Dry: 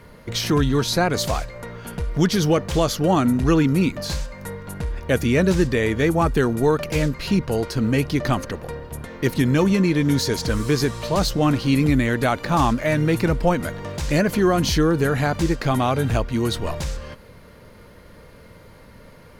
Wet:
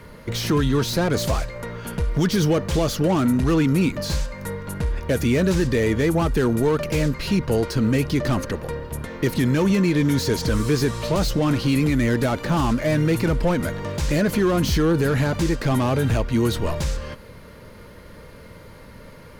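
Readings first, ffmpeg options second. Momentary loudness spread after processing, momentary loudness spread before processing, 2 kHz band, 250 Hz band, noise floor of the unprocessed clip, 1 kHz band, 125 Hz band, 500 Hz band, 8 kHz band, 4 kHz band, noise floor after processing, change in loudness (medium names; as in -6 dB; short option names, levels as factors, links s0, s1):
9 LU, 12 LU, -2.0 dB, -0.5 dB, -46 dBFS, -4.0 dB, +0.5 dB, -0.5 dB, -1.0 dB, -2.0 dB, -43 dBFS, -1.0 dB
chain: -filter_complex "[0:a]bandreject=f=730:w=12,acrossover=split=590[s0][s1];[s0]alimiter=limit=0.15:level=0:latency=1[s2];[s1]asoftclip=type=tanh:threshold=0.0376[s3];[s2][s3]amix=inputs=2:normalize=0,volume=1.41"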